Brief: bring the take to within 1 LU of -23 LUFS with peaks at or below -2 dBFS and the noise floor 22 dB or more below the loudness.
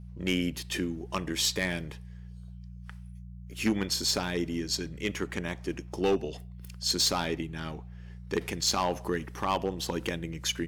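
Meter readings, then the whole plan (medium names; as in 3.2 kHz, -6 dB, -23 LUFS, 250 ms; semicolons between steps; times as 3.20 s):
clipped samples 0.5%; clipping level -19.5 dBFS; hum 60 Hz; highest harmonic 180 Hz; hum level -41 dBFS; loudness -30.5 LUFS; peak level -19.5 dBFS; loudness target -23.0 LUFS
-> clip repair -19.5 dBFS; de-hum 60 Hz, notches 3; trim +7.5 dB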